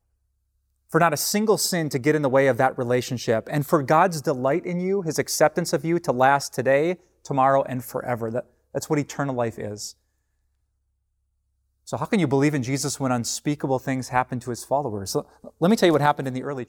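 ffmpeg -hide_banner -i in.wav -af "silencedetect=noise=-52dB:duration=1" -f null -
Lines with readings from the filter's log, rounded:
silence_start: 9.93
silence_end: 11.86 | silence_duration: 1.94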